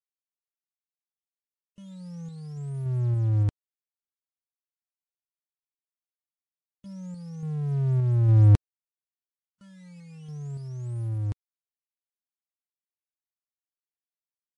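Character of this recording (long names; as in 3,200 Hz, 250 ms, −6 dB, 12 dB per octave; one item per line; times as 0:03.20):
sample-and-hold tremolo
a quantiser's noise floor 10 bits, dither none
Ogg Vorbis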